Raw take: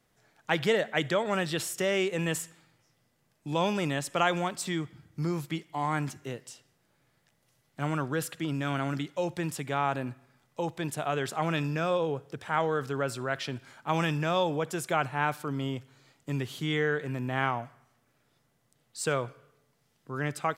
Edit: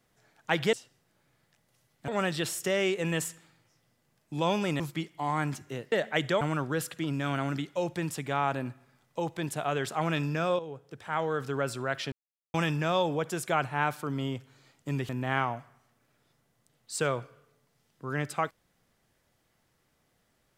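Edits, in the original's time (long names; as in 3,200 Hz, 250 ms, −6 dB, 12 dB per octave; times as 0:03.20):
0:00.73–0:01.22: swap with 0:06.47–0:07.82
0:03.94–0:05.35: remove
0:12.00–0:12.94: fade in, from −12 dB
0:13.53–0:13.95: silence
0:16.50–0:17.15: remove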